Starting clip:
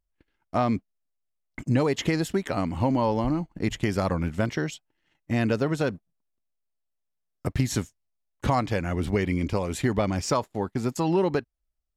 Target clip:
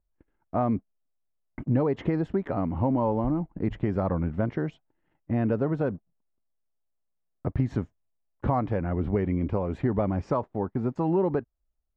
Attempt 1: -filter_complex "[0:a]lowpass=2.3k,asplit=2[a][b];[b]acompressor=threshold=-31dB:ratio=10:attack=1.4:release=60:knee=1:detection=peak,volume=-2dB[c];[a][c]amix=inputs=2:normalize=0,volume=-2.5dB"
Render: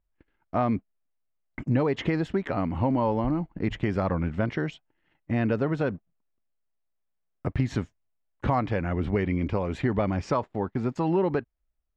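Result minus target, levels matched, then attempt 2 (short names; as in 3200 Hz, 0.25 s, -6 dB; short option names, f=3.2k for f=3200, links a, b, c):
2000 Hz band +7.0 dB
-filter_complex "[0:a]lowpass=1.1k,asplit=2[a][b];[b]acompressor=threshold=-31dB:ratio=10:attack=1.4:release=60:knee=1:detection=peak,volume=-2dB[c];[a][c]amix=inputs=2:normalize=0,volume=-2.5dB"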